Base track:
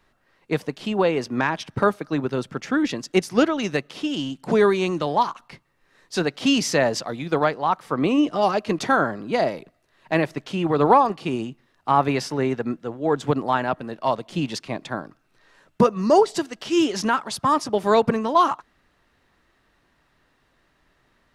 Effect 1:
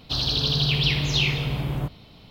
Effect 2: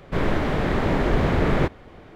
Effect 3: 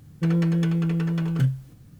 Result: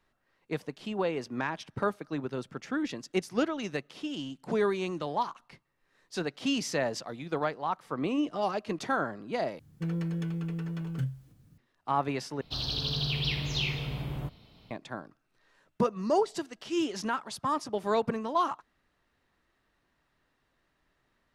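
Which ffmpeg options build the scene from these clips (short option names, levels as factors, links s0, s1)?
-filter_complex "[0:a]volume=0.316,asplit=3[s0][s1][s2];[s0]atrim=end=9.594[s3];[3:a]atrim=end=1.99,asetpts=PTS-STARTPTS,volume=0.299[s4];[s1]atrim=start=11.576:end=12.414[s5];[1:a]atrim=end=2.3,asetpts=PTS-STARTPTS,volume=0.376[s6];[s2]atrim=start=14.706[s7];[s3][s4]acrossfade=d=0.004:c1=hsin:c2=hsin[s8];[s8][s5]acrossfade=d=0.004:c1=hsin:c2=hsin[s9];[s9][s6]acrossfade=d=0.004:c1=hsin:c2=hsin[s10];[s10][s7]acrossfade=d=0.004:c1=hsin:c2=hsin"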